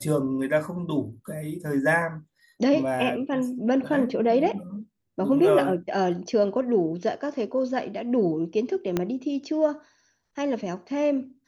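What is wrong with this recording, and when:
0:08.97: click −11 dBFS

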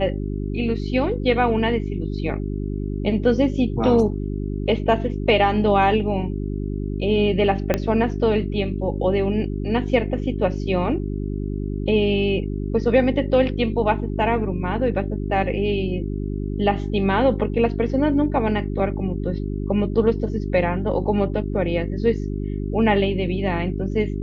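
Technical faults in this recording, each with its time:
mains hum 50 Hz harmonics 8 −26 dBFS
0:07.74: click −6 dBFS

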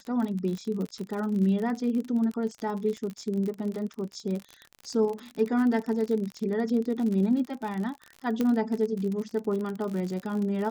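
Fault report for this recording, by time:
surface crackle 50 per second −32 dBFS
0:08.41: click −15 dBFS

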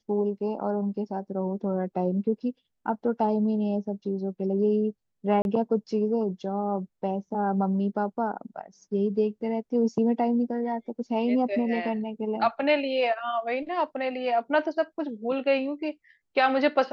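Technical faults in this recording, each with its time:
0:05.42–0:05.45: drop-out 31 ms

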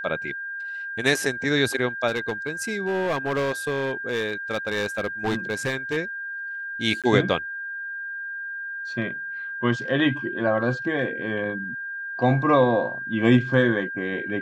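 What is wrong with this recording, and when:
whistle 1,600 Hz −30 dBFS
0:02.07–0:05.98: clipping −20.5 dBFS
0:07.02–0:07.04: drop-out 17 ms

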